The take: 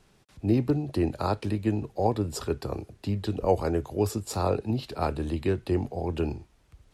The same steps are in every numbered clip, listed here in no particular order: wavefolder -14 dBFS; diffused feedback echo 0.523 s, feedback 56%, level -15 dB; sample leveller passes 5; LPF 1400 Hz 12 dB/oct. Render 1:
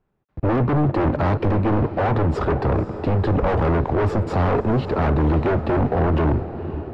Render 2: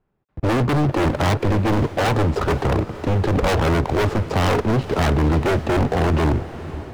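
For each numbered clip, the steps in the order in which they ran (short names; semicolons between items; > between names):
sample leveller > diffused feedback echo > wavefolder > LPF; LPF > sample leveller > wavefolder > diffused feedback echo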